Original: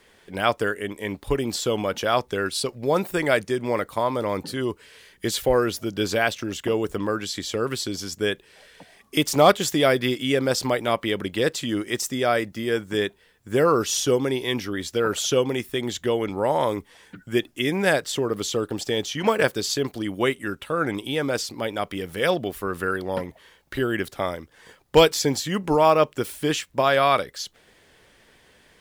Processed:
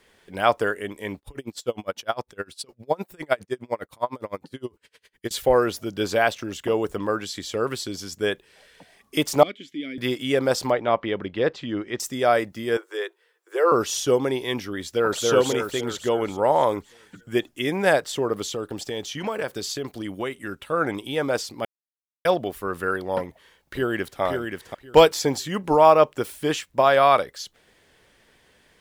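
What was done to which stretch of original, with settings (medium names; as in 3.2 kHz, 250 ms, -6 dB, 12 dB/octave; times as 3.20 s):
1.18–5.31 s: logarithmic tremolo 9.8 Hz, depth 32 dB
9.43–9.98 s: vowel filter i
10.71–12.00 s: distance through air 210 m
12.77–13.72 s: rippled Chebyshev high-pass 330 Hz, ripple 6 dB
14.84–15.24 s: echo throw 280 ms, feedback 55%, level -1 dB
18.45–20.59 s: compression, threshold -23 dBFS
21.65–22.25 s: mute
23.22–24.21 s: echo throw 530 ms, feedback 20%, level -4 dB
whole clip: dynamic bell 780 Hz, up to +7 dB, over -32 dBFS, Q 0.73; trim -3 dB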